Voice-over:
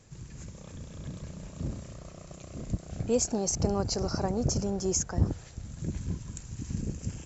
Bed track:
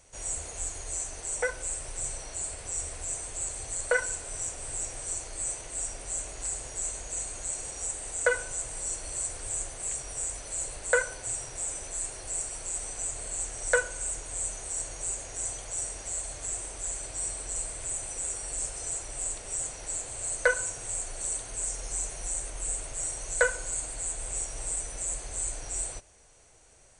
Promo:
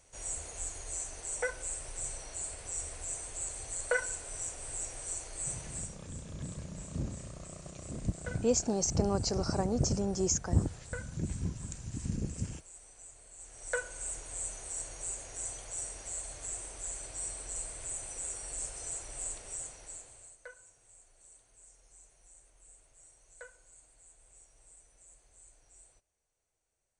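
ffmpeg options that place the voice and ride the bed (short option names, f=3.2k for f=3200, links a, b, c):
-filter_complex "[0:a]adelay=5350,volume=-1.5dB[a];[1:a]volume=8.5dB,afade=t=out:st=5.67:d=0.35:silence=0.199526,afade=t=in:st=13.37:d=0.73:silence=0.223872,afade=t=out:st=19.31:d=1.06:silence=0.0944061[b];[a][b]amix=inputs=2:normalize=0"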